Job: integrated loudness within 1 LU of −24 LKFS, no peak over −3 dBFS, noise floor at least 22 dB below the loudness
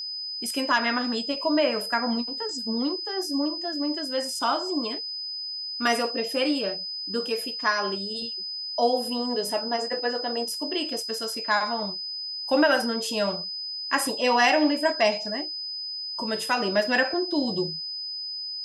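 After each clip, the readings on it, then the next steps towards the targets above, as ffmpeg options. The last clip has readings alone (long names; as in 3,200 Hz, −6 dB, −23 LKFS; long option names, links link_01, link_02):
interfering tone 5,000 Hz; level of the tone −31 dBFS; integrated loudness −26.0 LKFS; sample peak −8.0 dBFS; target loudness −24.0 LKFS
→ -af "bandreject=frequency=5000:width=30"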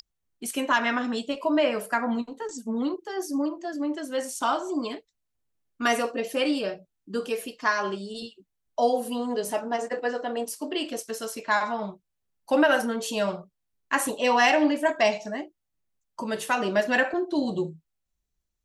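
interfering tone none found; integrated loudness −27.0 LKFS; sample peak −8.5 dBFS; target loudness −24.0 LKFS
→ -af "volume=3dB"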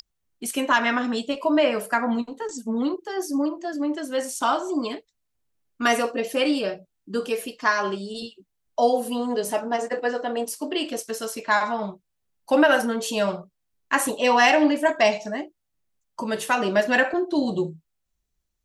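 integrated loudness −24.0 LKFS; sample peak −5.5 dBFS; background noise floor −77 dBFS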